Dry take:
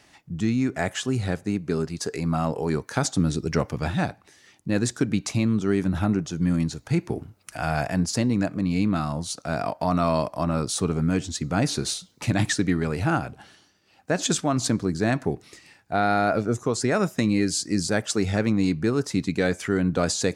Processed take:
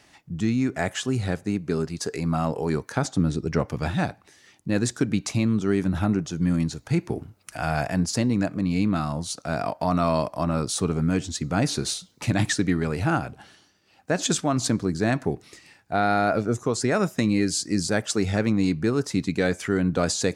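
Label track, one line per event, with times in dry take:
2.920000	3.700000	high-shelf EQ 3,000 Hz −7.5 dB

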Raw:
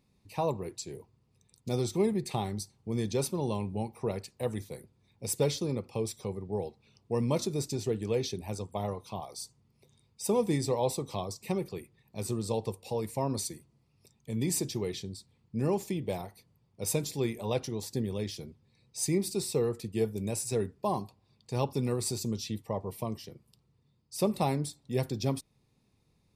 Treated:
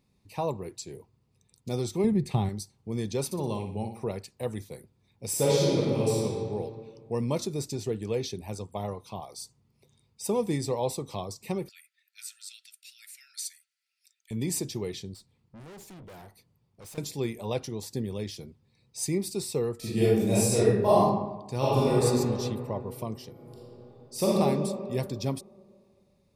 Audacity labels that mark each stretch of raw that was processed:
2.040000	2.490000	bass and treble bass +10 dB, treble −5 dB
3.250000	4.040000	flutter between parallel walls apart 10.5 metres, dies away in 0.48 s
5.290000	6.220000	thrown reverb, RT60 2.1 s, DRR −7 dB
11.690000	14.310000	linear-phase brick-wall high-pass 1,300 Hz
15.140000	16.980000	tube saturation drive 45 dB, bias 0.35
19.780000	21.030000	thrown reverb, RT60 1 s, DRR −10 dB
21.570000	22.020000	thrown reverb, RT60 2.5 s, DRR −8.5 dB
23.310000	24.290000	thrown reverb, RT60 2.3 s, DRR −6.5 dB

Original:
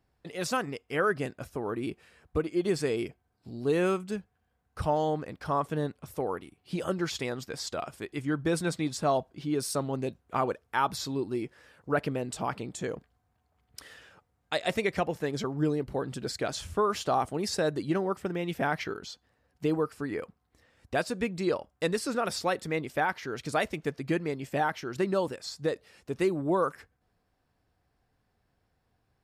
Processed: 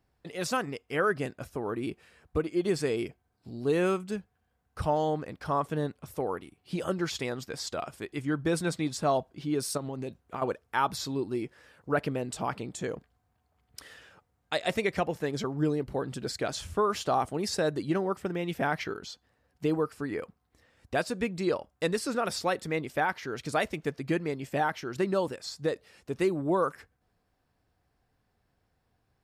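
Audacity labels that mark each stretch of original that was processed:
9.770000	10.420000	downward compressor, threshold −31 dBFS

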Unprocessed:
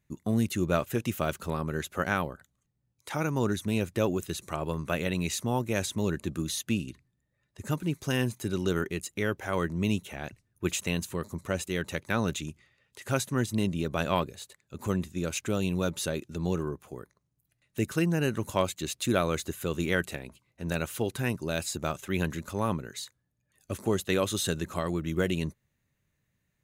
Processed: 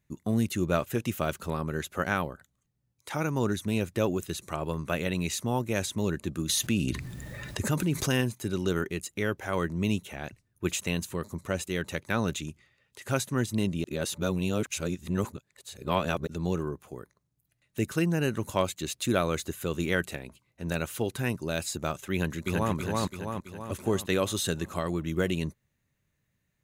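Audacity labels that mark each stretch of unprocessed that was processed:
6.490000	8.210000	envelope flattener amount 70%
13.840000	16.270000	reverse
22.130000	22.740000	delay throw 330 ms, feedback 55%, level −1 dB

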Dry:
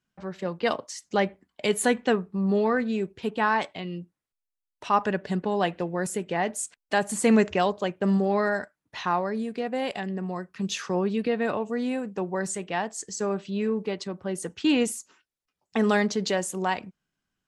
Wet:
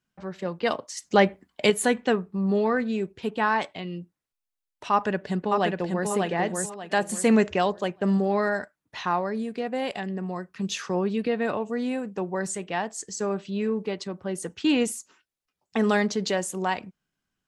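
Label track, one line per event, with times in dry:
0.970000	1.700000	clip gain +5.5 dB
4.920000	6.100000	delay throw 590 ms, feedback 30%, level −3.5 dB

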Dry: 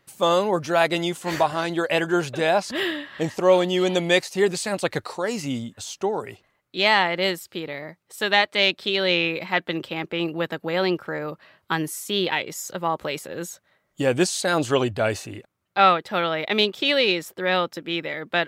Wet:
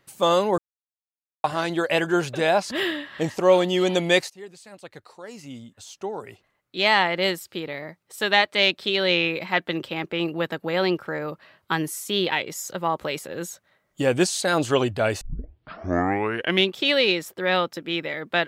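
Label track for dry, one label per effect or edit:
0.580000	1.440000	silence
4.300000	7.030000	fade in quadratic, from −20.5 dB
15.210000	15.210000	tape start 1.55 s

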